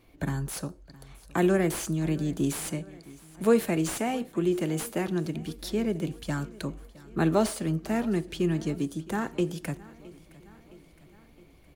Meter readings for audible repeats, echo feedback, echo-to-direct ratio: 4, 59%, -19.0 dB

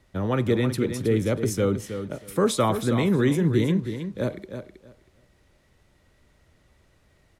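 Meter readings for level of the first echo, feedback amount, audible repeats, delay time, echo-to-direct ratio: -9.0 dB, 18%, 2, 319 ms, -9.0 dB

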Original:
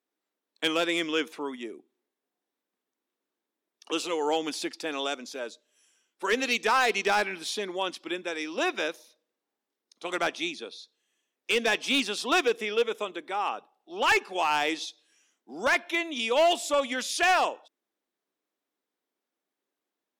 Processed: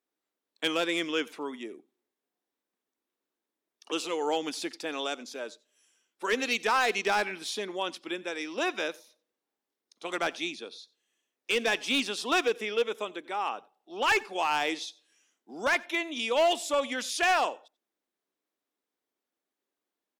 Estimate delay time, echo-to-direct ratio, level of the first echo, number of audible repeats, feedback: 89 ms, -23.5 dB, -23.5 dB, 1, no regular repeats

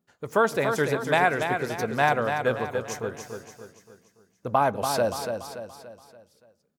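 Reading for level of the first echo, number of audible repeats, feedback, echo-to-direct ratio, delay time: -6.5 dB, 5, 45%, -5.5 dB, 287 ms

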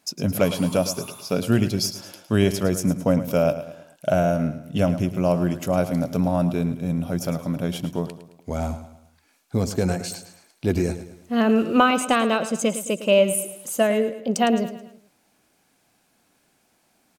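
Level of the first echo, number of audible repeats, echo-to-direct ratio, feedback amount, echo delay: -12.5 dB, 4, -11.5 dB, 44%, 108 ms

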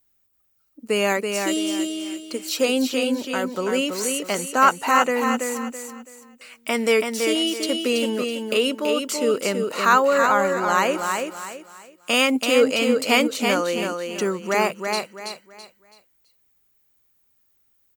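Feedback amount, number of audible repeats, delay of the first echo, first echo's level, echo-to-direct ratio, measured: 31%, 3, 330 ms, -5.0 dB, -4.5 dB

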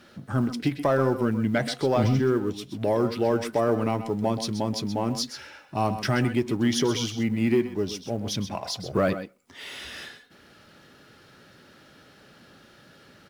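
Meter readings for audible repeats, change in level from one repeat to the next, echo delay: 1, no regular repeats, 127 ms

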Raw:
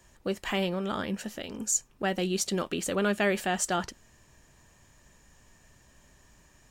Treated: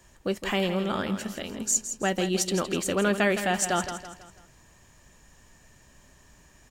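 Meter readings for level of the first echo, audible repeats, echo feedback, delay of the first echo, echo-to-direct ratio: -10.0 dB, 4, 42%, 164 ms, -9.0 dB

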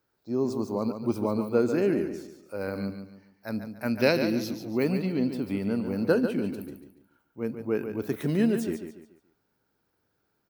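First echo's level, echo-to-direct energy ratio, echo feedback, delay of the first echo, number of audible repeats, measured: -8.5 dB, -8.0 dB, 34%, 143 ms, 3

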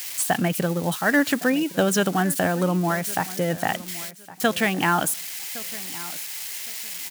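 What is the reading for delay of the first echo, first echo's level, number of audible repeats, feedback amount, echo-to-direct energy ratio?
1113 ms, -18.5 dB, 2, 23%, -18.5 dB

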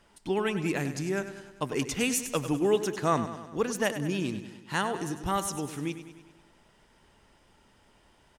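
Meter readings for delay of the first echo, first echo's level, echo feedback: 99 ms, -11.5 dB, 58%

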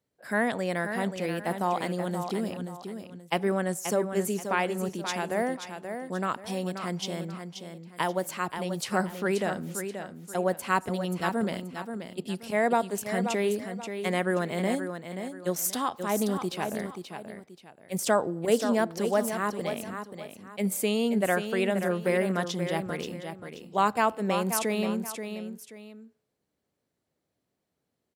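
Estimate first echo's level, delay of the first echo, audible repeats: -8.0 dB, 531 ms, 2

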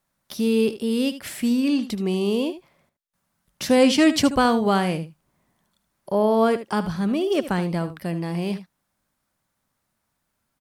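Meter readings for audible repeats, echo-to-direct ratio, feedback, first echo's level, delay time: 1, -13.0 dB, no regular repeats, -13.0 dB, 76 ms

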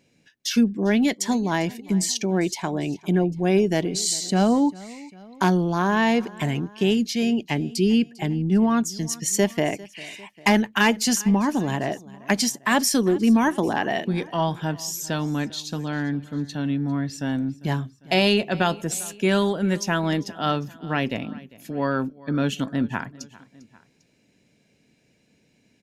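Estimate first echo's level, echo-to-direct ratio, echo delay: -21.0 dB, -20.0 dB, 399 ms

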